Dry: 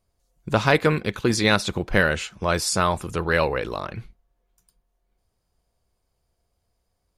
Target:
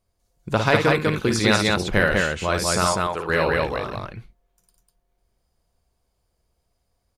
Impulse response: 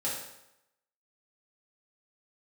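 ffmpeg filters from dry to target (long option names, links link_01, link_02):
-filter_complex "[0:a]asettb=1/sr,asplit=3[link_01][link_02][link_03];[link_01]atrim=end=2.874[link_04];[link_02]atrim=start=2.87:end=3.29,asetpts=PTS-STARTPTS,afade=type=in:duration=0.004:curve=qsin,afade=type=out:start_time=0.416:duration=0.004:curve=qsin,bass=frequency=250:gain=-14,treble=frequency=4000:gain=-9[link_05];[link_03]atrim=start=3.286[link_06];[link_04][link_05]acrossfade=duration=0.004:curve1=hsin:curve2=qsin[link_07];[link_07][link_06]acrossfade=duration=0.004:curve1=qsin:curve2=hsin,aecho=1:1:55.39|198.3:0.501|0.794,volume=-1dB"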